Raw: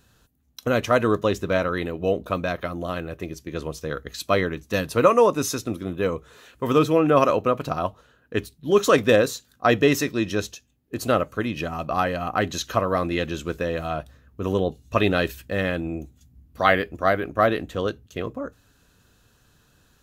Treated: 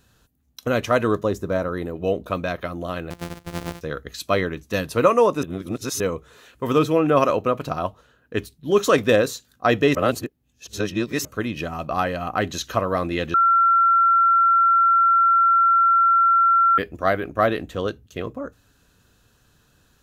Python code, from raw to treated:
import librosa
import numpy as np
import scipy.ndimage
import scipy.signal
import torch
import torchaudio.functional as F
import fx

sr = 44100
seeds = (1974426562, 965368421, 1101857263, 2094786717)

y = fx.peak_eq(x, sr, hz=2800.0, db=-12.0, octaves=1.4, at=(1.23, 1.96))
y = fx.sample_sort(y, sr, block=256, at=(3.1, 3.81))
y = fx.edit(y, sr, fx.reverse_span(start_s=5.43, length_s=0.57),
    fx.reverse_span(start_s=9.95, length_s=1.3),
    fx.bleep(start_s=13.34, length_s=3.44, hz=1360.0, db=-13.0), tone=tone)